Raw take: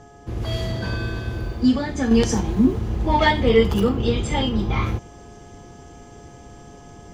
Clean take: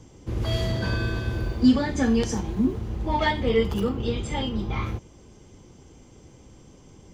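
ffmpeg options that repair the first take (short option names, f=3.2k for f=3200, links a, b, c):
-af "bandreject=f=420.2:t=h:w=4,bandreject=f=840.4:t=h:w=4,bandreject=f=1.2606k:t=h:w=4,bandreject=f=1.6808k:t=h:w=4,bandreject=f=700:w=30,asetnsamples=n=441:p=0,asendcmd='2.11 volume volume -6dB',volume=0dB"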